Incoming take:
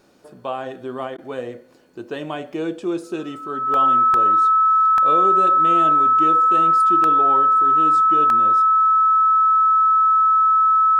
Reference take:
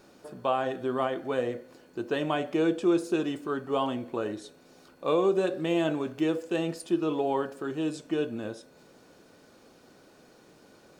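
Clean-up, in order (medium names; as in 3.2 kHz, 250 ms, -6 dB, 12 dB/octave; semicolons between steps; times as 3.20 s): band-stop 1.3 kHz, Q 30; interpolate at 1.83/2.53/3.74/4.14/4.98/7.04/8.30 s, 1.3 ms; interpolate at 1.17 s, 11 ms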